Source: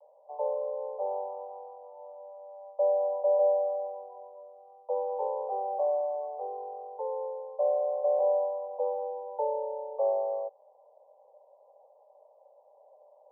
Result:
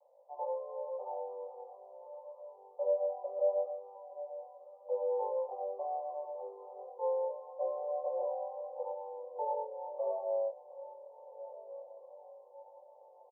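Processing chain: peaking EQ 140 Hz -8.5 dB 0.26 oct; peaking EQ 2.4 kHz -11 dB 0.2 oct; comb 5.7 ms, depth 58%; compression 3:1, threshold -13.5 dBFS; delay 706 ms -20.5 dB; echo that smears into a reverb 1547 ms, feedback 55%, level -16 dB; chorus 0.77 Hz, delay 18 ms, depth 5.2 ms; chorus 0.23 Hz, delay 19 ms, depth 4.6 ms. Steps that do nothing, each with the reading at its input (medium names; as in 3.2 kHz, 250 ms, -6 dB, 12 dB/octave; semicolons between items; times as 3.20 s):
peaking EQ 140 Hz: input has nothing below 380 Hz; peaking EQ 2.4 kHz: input has nothing above 1 kHz; compression, threshold -13.5 dBFS: peak at its input -16.5 dBFS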